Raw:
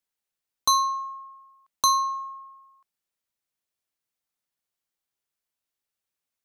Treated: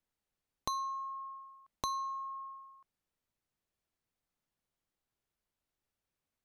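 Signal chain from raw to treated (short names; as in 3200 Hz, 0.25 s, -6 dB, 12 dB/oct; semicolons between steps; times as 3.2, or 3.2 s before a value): tilt -2.5 dB/oct; compressor 3:1, threshold -41 dBFS, peak gain reduction 16 dB; gain +1 dB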